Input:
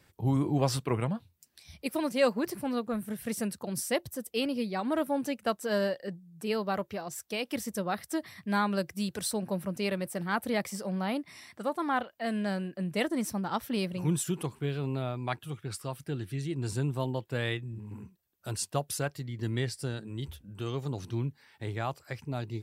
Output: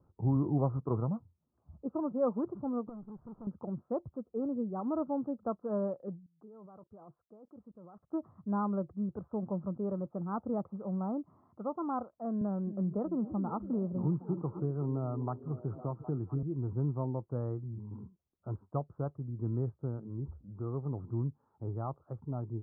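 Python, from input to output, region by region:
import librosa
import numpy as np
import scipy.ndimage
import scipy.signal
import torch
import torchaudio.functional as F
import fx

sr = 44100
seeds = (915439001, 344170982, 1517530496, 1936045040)

y = fx.chain(x, sr, fx.highpass(hz=50.0, slope=12),
    fx.tube_stage(drive_db=41.0, bias=0.6), at=(2.89, 3.47))
y = fx.chain(y, sr, fx.low_shelf(hz=140.0, db=-7.0),
    fx.level_steps(step_db=24), at=(6.26, 8.1))
y = fx.chain(y, sr, fx.echo_stepped(ms=255, hz=260.0, octaves=0.7, feedback_pct=70, wet_db=-10),
    fx.band_squash(depth_pct=70), at=(12.41, 16.43))
y = scipy.signal.sosfilt(scipy.signal.cheby1(6, 1.0, 1300.0, 'lowpass', fs=sr, output='sos'), y)
y = fx.low_shelf(y, sr, hz=330.0, db=6.5)
y = F.gain(torch.from_numpy(y), -6.0).numpy()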